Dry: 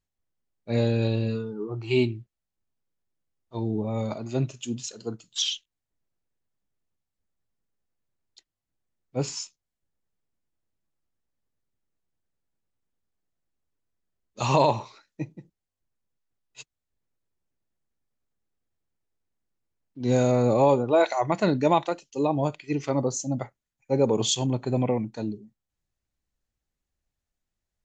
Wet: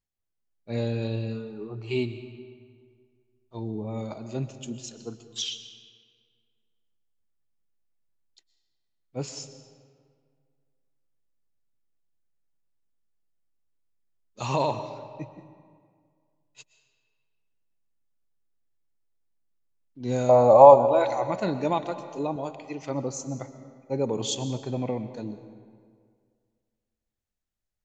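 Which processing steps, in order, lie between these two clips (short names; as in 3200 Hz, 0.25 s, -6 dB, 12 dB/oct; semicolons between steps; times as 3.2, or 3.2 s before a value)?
20.29–20.76 band shelf 770 Hz +15.5 dB 1.3 oct; 22.36–22.82 HPF 360 Hz 6 dB/oct; on a send: reverb RT60 2.0 s, pre-delay 85 ms, DRR 11 dB; on the sum: gain -5 dB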